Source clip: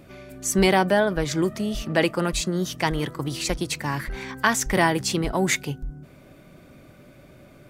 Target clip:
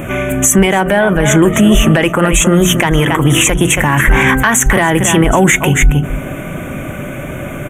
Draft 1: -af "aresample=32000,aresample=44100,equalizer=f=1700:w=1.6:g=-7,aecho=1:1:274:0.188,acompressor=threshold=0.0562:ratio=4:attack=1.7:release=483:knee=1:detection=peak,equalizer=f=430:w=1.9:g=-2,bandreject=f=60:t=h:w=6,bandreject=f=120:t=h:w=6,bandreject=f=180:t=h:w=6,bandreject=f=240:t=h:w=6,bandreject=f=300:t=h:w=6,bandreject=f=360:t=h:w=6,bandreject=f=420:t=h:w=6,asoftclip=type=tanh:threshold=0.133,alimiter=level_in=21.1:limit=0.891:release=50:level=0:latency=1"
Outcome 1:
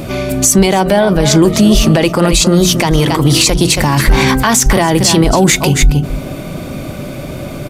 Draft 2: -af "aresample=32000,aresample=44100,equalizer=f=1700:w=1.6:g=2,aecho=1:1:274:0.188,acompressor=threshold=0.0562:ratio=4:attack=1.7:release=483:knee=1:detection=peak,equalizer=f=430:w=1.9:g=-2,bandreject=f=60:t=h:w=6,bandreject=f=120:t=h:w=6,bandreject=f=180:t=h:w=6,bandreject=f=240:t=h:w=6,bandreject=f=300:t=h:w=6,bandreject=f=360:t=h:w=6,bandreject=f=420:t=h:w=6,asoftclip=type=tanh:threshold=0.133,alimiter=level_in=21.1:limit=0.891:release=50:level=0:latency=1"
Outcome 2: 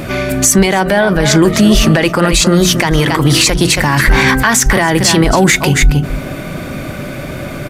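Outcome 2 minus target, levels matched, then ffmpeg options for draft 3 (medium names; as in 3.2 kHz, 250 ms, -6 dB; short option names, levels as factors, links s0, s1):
4 kHz band +4.0 dB
-af "aresample=32000,aresample=44100,equalizer=f=1700:w=1.6:g=2,aecho=1:1:274:0.188,acompressor=threshold=0.0562:ratio=4:attack=1.7:release=483:knee=1:detection=peak,asuperstop=centerf=4600:order=8:qfactor=1.6,equalizer=f=430:w=1.9:g=-2,bandreject=f=60:t=h:w=6,bandreject=f=120:t=h:w=6,bandreject=f=180:t=h:w=6,bandreject=f=240:t=h:w=6,bandreject=f=300:t=h:w=6,bandreject=f=360:t=h:w=6,bandreject=f=420:t=h:w=6,asoftclip=type=tanh:threshold=0.133,alimiter=level_in=21.1:limit=0.891:release=50:level=0:latency=1"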